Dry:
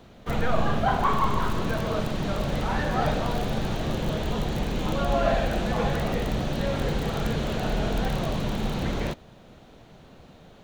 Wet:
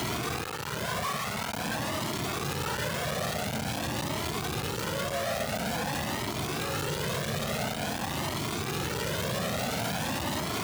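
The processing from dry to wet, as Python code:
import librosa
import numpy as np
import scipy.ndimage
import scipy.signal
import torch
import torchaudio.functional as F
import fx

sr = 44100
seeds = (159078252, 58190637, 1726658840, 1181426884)

y = np.sign(x) * np.sqrt(np.mean(np.square(x)))
y = scipy.signal.sosfilt(scipy.signal.butter(4, 86.0, 'highpass', fs=sr, output='sos'), y)
y = fx.comb_cascade(y, sr, direction='rising', hz=0.48)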